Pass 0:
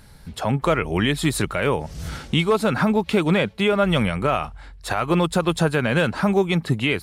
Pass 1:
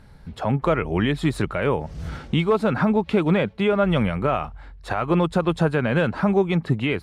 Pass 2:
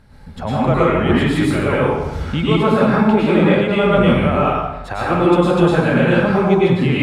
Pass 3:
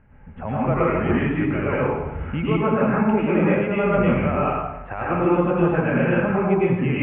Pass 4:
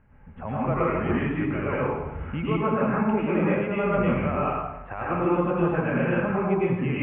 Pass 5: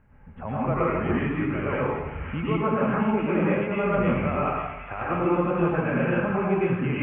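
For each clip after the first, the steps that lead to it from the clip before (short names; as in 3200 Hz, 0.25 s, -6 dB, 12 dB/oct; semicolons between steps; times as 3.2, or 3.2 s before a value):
LPF 1700 Hz 6 dB/oct
plate-style reverb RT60 1 s, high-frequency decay 0.8×, pre-delay 90 ms, DRR -7.5 dB; gain -1 dB
steep low-pass 2800 Hz 72 dB/oct; gain -5.5 dB
bell 1100 Hz +3.5 dB 0.3 oct; gain -4.5 dB
thin delay 0.538 s, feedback 69%, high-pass 1800 Hz, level -7 dB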